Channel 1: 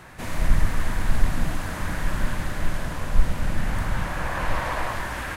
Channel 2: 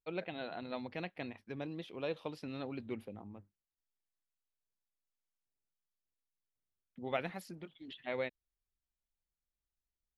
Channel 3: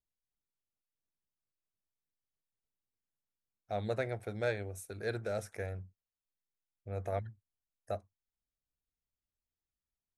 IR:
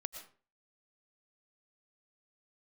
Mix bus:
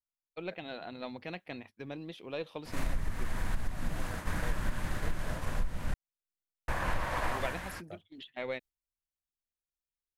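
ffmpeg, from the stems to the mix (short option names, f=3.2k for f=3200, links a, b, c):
-filter_complex "[0:a]agate=range=-33dB:threshold=-22dB:ratio=3:detection=peak,adelay=2450,volume=-1.5dB,asplit=3[a][b][c];[a]atrim=end=5.94,asetpts=PTS-STARTPTS,afade=t=out:st=5.936:d=0.004:c=hsin[d];[b]atrim=start=5.94:end=6.68,asetpts=PTS-STARTPTS,volume=0[e];[c]atrim=start=6.68,asetpts=PTS-STARTPTS,afade=t=in:d=0.004:c=hsin[f];[d][e][f]concat=n=3:v=0:a=1[g];[1:a]agate=range=-12dB:threshold=-52dB:ratio=16:detection=peak,highshelf=f=4.2k:g=6,aeval=exprs='0.119*(cos(1*acos(clip(val(0)/0.119,-1,1)))-cos(1*PI/2))+0.0015*(cos(8*acos(clip(val(0)/0.119,-1,1)))-cos(8*PI/2))':c=same,adelay=300,volume=0dB[h];[2:a]volume=-11dB[i];[g][h][i]amix=inputs=3:normalize=0,acompressor=threshold=-26dB:ratio=12"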